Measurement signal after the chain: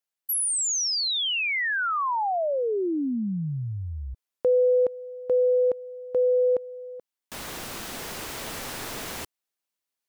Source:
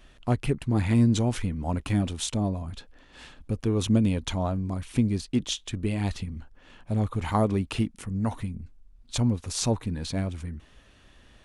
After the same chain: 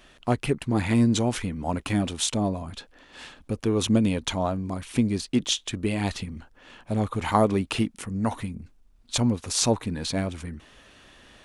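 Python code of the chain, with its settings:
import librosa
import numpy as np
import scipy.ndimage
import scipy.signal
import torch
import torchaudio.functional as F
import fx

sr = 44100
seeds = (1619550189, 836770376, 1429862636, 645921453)

p1 = fx.low_shelf(x, sr, hz=140.0, db=-12.0)
p2 = fx.rider(p1, sr, range_db=4, speed_s=2.0)
p3 = p1 + F.gain(torch.from_numpy(p2), 1.0).numpy()
y = F.gain(torch.from_numpy(p3), -2.0).numpy()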